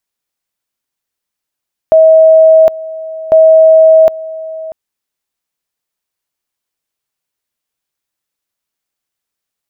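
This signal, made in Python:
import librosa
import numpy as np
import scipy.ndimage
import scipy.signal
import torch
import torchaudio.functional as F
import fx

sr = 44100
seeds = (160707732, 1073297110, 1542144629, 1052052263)

y = fx.two_level_tone(sr, hz=640.0, level_db=-1.5, drop_db=18.5, high_s=0.76, low_s=0.64, rounds=2)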